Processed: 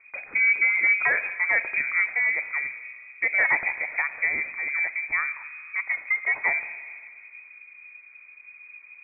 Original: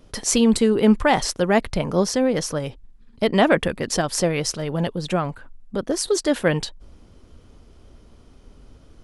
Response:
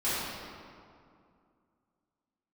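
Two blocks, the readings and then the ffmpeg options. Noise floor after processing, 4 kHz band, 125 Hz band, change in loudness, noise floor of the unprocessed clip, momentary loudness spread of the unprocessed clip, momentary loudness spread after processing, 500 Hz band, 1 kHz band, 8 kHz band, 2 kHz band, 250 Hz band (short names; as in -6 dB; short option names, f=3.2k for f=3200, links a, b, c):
-50 dBFS, under -40 dB, under -30 dB, -2.0 dB, -51 dBFS, 10 LU, 16 LU, -22.0 dB, -10.0 dB, under -40 dB, +9.0 dB, under -30 dB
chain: -filter_complex "[0:a]equalizer=f=77:w=1.1:g=8,asoftclip=type=tanh:threshold=-9.5dB,asplit=2[a][b];[1:a]atrim=start_sample=2205[c];[b][c]afir=irnorm=-1:irlink=0,volume=-22.5dB[d];[a][d]amix=inputs=2:normalize=0,lowpass=f=2.1k:t=q:w=0.5098,lowpass=f=2.1k:t=q:w=0.6013,lowpass=f=2.1k:t=q:w=0.9,lowpass=f=2.1k:t=q:w=2.563,afreqshift=-2500,volume=-4.5dB"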